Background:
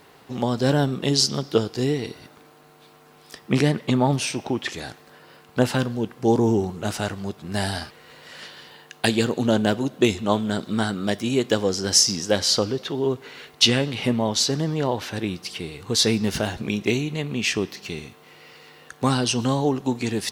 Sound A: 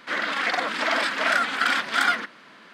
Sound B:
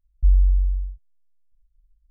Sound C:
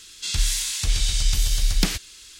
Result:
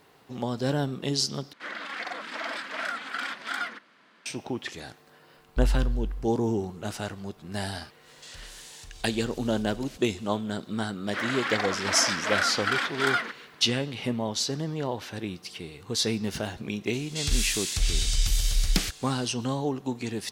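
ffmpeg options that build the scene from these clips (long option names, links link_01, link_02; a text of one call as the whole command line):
ffmpeg -i bed.wav -i cue0.wav -i cue1.wav -i cue2.wav -filter_complex "[1:a]asplit=2[link_01][link_02];[3:a]asplit=2[link_03][link_04];[0:a]volume=-7dB[link_05];[link_03]acompressor=threshold=-30dB:ratio=6:attack=3.2:release=140:knee=1:detection=peak[link_06];[link_04]bandreject=frequency=970:width=12[link_07];[link_05]asplit=2[link_08][link_09];[link_08]atrim=end=1.534[link_10];[link_01]atrim=end=2.73,asetpts=PTS-STARTPTS,volume=-10.5dB[link_11];[link_09]atrim=start=4.256[link_12];[2:a]atrim=end=2.1,asetpts=PTS-STARTPTS,volume=-8dB,afade=type=in:duration=0.004:curve=hsin,afade=type=out:start_time=2.096:duration=0.004:curve=hsin,adelay=5340[link_13];[link_06]atrim=end=2.39,asetpts=PTS-STARTPTS,volume=-13dB,afade=type=in:duration=0.1,afade=type=out:start_time=2.29:duration=0.1,adelay=8000[link_14];[link_02]atrim=end=2.73,asetpts=PTS-STARTPTS,volume=-4.5dB,afade=type=in:duration=0.004:curve=hsin,afade=type=out:start_time=2.726:duration=0.004:curve=hsin,adelay=487746S[link_15];[link_07]atrim=end=2.39,asetpts=PTS-STARTPTS,volume=-3.5dB,afade=type=in:duration=0.004:curve=hsin,afade=type=out:start_time=2.386:duration=0.004:curve=hsin,adelay=16930[link_16];[link_10][link_11]acrossfade=duration=0.004:curve1=hsin:curve2=hsin[link_17];[link_17][link_12]acrossfade=duration=0.004:curve1=hsin:curve2=hsin[link_18];[link_18][link_13][link_14][link_15][link_16]amix=inputs=5:normalize=0" out.wav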